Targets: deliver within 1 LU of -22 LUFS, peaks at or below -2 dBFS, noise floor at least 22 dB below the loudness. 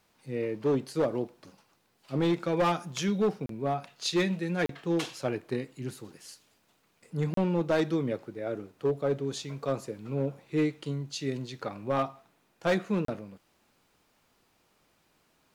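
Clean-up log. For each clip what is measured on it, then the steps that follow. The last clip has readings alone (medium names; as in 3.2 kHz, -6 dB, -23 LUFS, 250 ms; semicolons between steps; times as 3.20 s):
clipped samples 0.9%; clipping level -20.5 dBFS; dropouts 4; longest dropout 33 ms; loudness -31.0 LUFS; peak level -20.5 dBFS; loudness target -22.0 LUFS
-> clip repair -20.5 dBFS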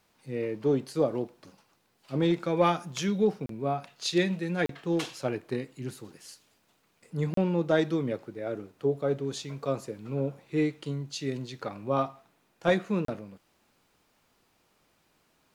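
clipped samples 0.0%; dropouts 4; longest dropout 33 ms
-> interpolate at 3.46/4.66/7.34/13.05 s, 33 ms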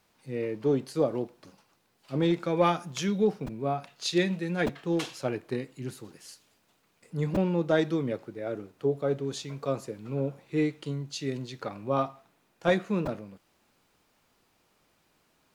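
dropouts 0; loudness -30.0 LUFS; peak level -11.5 dBFS; loudness target -22.0 LUFS
-> trim +8 dB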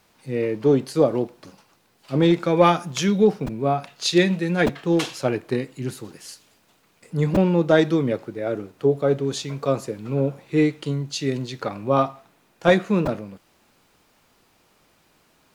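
loudness -22.0 LUFS; peak level -3.5 dBFS; noise floor -62 dBFS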